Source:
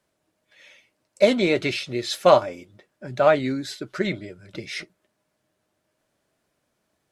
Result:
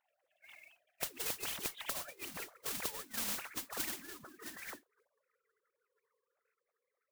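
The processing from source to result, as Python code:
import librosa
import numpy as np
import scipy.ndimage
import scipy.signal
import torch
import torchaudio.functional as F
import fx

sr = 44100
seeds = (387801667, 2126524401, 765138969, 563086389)

y = fx.sine_speech(x, sr)
y = fx.doppler_pass(y, sr, speed_mps=53, closest_m=6.1, pass_at_s=2.3)
y = fx.pitch_keep_formants(y, sr, semitones=-3.5)
y = fx.gate_flip(y, sr, shuts_db=-37.0, range_db=-34)
y = fx.mod_noise(y, sr, seeds[0], snr_db=13)
y = fx.spectral_comp(y, sr, ratio=4.0)
y = y * librosa.db_to_amplitude(15.5)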